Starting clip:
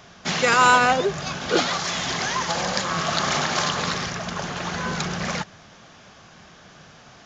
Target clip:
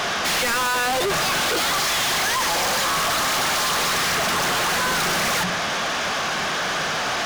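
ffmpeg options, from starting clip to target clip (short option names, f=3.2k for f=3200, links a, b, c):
-filter_complex "[0:a]bandreject=f=60:t=h:w=6,bandreject=f=120:t=h:w=6,bandreject=f=180:t=h:w=6,asplit=2[a][b];[b]highpass=f=720:p=1,volume=36dB,asoftclip=type=tanh:threshold=-5dB[c];[a][c]amix=inputs=2:normalize=0,lowpass=f=4.1k:p=1,volume=-6dB,volume=21dB,asoftclip=hard,volume=-21dB"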